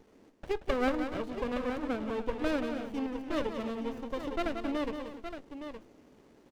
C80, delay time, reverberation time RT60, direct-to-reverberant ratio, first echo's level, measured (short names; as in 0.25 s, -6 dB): none, 0.18 s, none, none, -8.0 dB